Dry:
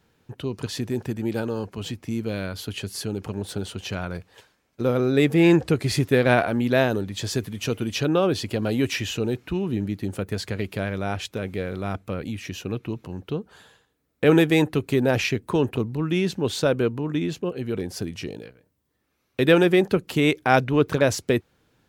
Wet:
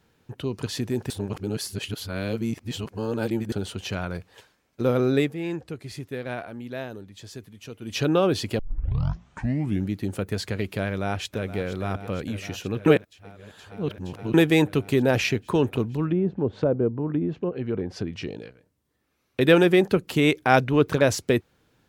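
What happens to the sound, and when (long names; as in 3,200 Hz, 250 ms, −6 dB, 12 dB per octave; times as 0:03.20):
0:01.10–0:03.52: reverse
0:05.13–0:08.01: duck −14 dB, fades 0.20 s
0:08.59: tape start 1.30 s
0:10.86–0:11.60: delay throw 470 ms, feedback 85%, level −13.5 dB
0:12.86–0:14.34: reverse
0:16.04–0:19.41: treble cut that deepens with the level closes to 660 Hz, closed at −20.5 dBFS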